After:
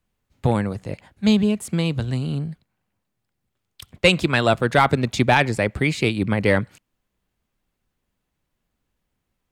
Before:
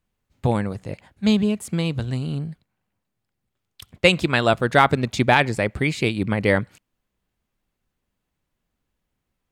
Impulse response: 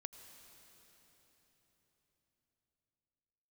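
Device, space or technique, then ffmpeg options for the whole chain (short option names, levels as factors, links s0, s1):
one-band saturation: -filter_complex "[0:a]acrossover=split=220|2700[s0][s1][s2];[s1]asoftclip=type=tanh:threshold=0.335[s3];[s0][s3][s2]amix=inputs=3:normalize=0,volume=1.19"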